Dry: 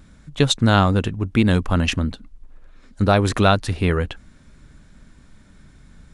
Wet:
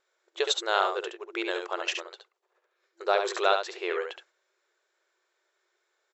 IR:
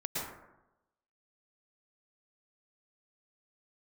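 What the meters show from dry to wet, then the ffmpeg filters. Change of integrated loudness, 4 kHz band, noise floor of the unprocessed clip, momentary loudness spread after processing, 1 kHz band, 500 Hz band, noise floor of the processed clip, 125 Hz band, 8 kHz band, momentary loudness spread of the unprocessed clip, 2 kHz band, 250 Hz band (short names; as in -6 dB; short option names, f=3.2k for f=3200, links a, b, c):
-9.5 dB, -6.0 dB, -50 dBFS, 12 LU, -6.0 dB, -6.0 dB, -78 dBFS, under -40 dB, -7.0 dB, 9 LU, -6.0 dB, -21.5 dB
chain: -af "agate=range=-10dB:threshold=-40dB:ratio=16:detection=peak,afftfilt=real='re*between(b*sr/4096,340,7800)':imag='im*between(b*sr/4096,340,7800)':win_size=4096:overlap=0.75,aecho=1:1:70:0.501,volume=-7dB"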